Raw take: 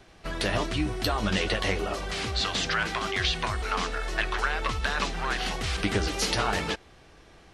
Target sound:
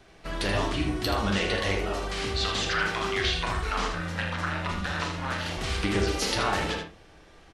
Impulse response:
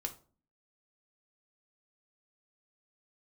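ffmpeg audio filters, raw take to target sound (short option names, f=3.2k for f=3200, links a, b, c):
-filter_complex "[0:a]asplit=3[a][b][c];[a]afade=t=out:st=3.92:d=0.02[d];[b]aeval=exprs='val(0)*sin(2*PI*130*n/s)':c=same,afade=t=in:st=3.92:d=0.02,afade=t=out:st=5.56:d=0.02[e];[c]afade=t=in:st=5.56:d=0.02[f];[d][e][f]amix=inputs=3:normalize=0,aecho=1:1:30|79:0.251|0.447,asplit=2[g][h];[1:a]atrim=start_sample=2205,lowpass=3.7k,adelay=41[i];[h][i]afir=irnorm=-1:irlink=0,volume=-3.5dB[j];[g][j]amix=inputs=2:normalize=0,volume=-2dB"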